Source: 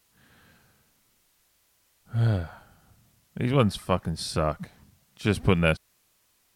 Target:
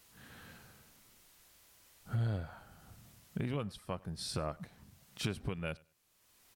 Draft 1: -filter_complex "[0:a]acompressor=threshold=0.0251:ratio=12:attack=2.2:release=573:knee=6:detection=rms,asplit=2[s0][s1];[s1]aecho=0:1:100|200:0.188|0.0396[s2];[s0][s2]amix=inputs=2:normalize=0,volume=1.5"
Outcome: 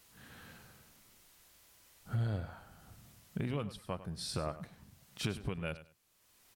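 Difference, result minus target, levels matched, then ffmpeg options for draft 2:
echo-to-direct +10.5 dB
-filter_complex "[0:a]acompressor=threshold=0.0251:ratio=12:attack=2.2:release=573:knee=6:detection=rms,asplit=2[s0][s1];[s1]aecho=0:1:100|200:0.0562|0.0118[s2];[s0][s2]amix=inputs=2:normalize=0,volume=1.5"

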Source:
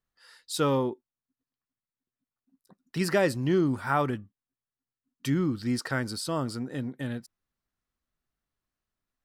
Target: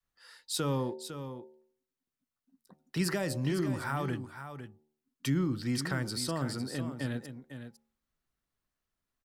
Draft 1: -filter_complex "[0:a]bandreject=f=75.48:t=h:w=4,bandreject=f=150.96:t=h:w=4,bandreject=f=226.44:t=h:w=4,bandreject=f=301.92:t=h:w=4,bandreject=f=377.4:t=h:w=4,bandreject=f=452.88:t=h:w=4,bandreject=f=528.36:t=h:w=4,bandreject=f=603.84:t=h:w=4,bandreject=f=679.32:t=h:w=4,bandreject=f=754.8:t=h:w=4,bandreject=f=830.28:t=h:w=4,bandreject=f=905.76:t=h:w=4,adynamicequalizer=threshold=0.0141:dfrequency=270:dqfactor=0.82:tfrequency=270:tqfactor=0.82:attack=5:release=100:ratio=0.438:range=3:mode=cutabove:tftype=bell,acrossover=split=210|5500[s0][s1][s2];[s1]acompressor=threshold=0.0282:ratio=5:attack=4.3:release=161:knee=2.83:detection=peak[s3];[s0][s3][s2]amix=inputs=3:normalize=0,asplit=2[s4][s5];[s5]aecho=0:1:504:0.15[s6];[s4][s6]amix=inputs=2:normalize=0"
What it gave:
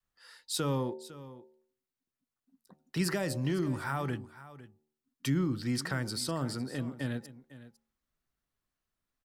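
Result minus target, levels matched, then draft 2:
echo-to-direct -6.5 dB
-filter_complex "[0:a]bandreject=f=75.48:t=h:w=4,bandreject=f=150.96:t=h:w=4,bandreject=f=226.44:t=h:w=4,bandreject=f=301.92:t=h:w=4,bandreject=f=377.4:t=h:w=4,bandreject=f=452.88:t=h:w=4,bandreject=f=528.36:t=h:w=4,bandreject=f=603.84:t=h:w=4,bandreject=f=679.32:t=h:w=4,bandreject=f=754.8:t=h:w=4,bandreject=f=830.28:t=h:w=4,bandreject=f=905.76:t=h:w=4,adynamicequalizer=threshold=0.0141:dfrequency=270:dqfactor=0.82:tfrequency=270:tqfactor=0.82:attack=5:release=100:ratio=0.438:range=3:mode=cutabove:tftype=bell,acrossover=split=210|5500[s0][s1][s2];[s1]acompressor=threshold=0.0282:ratio=5:attack=4.3:release=161:knee=2.83:detection=peak[s3];[s0][s3][s2]amix=inputs=3:normalize=0,asplit=2[s4][s5];[s5]aecho=0:1:504:0.316[s6];[s4][s6]amix=inputs=2:normalize=0"

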